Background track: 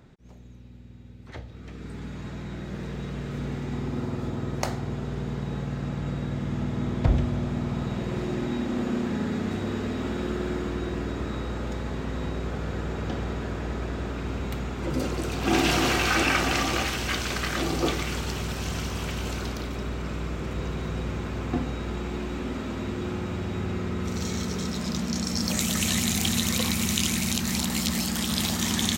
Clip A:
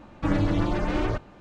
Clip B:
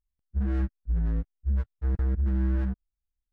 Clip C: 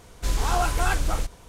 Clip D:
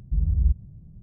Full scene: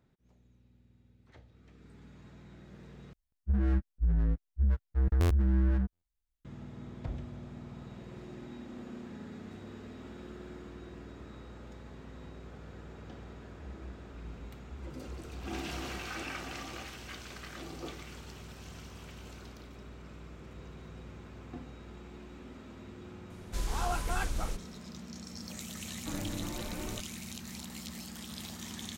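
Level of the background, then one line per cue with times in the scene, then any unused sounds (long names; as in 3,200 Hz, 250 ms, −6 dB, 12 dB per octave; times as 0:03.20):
background track −17 dB
0:03.13: overwrite with B −1 dB + buffer that repeats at 0:02.07/0:02.79
0:13.26: mix in B −13.5 dB + downward compressor, threshold −30 dBFS
0:23.30: mix in C −9.5 dB
0:25.83: mix in A −15 dB
not used: D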